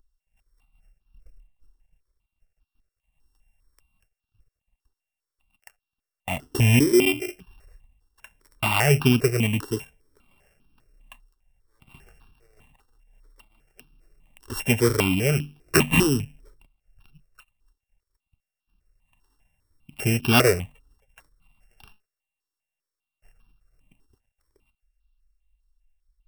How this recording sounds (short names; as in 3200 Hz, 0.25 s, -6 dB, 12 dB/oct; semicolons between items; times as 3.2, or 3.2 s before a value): a buzz of ramps at a fixed pitch in blocks of 16 samples; notches that jump at a steady rate 5 Hz 630–2000 Hz